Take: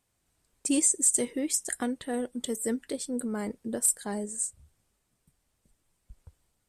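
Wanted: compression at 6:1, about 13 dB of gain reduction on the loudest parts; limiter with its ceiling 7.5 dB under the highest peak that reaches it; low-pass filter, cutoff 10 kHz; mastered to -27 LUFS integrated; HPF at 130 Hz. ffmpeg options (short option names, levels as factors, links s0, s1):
-af "highpass=130,lowpass=10000,acompressor=threshold=0.0158:ratio=6,volume=5.01,alimiter=limit=0.141:level=0:latency=1"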